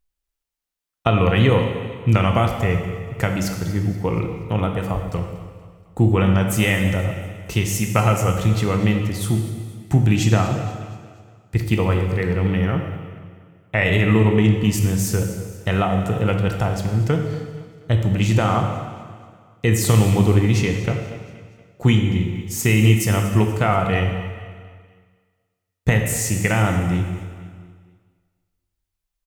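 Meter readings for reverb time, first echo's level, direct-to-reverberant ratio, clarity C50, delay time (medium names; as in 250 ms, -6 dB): 1.8 s, -17.0 dB, 3.5 dB, 5.0 dB, 238 ms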